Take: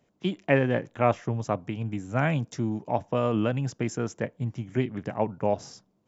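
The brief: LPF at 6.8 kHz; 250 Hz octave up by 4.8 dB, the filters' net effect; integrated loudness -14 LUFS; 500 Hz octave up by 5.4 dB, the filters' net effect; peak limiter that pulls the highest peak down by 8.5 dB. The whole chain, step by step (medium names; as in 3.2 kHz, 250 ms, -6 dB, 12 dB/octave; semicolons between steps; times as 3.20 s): low-pass 6.8 kHz; peaking EQ 250 Hz +4.5 dB; peaking EQ 500 Hz +5.5 dB; trim +12.5 dB; peak limiter 0 dBFS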